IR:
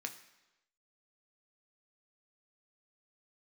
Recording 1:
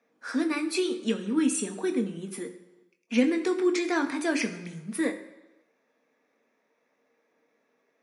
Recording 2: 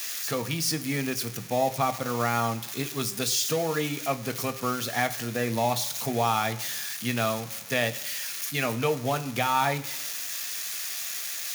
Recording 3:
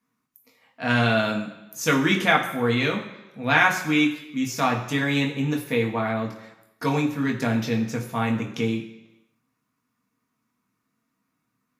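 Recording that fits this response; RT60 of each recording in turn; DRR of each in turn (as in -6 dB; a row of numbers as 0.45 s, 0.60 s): 1; 1.0 s, 1.0 s, 1.0 s; 4.5 dB, 9.0 dB, -0.5 dB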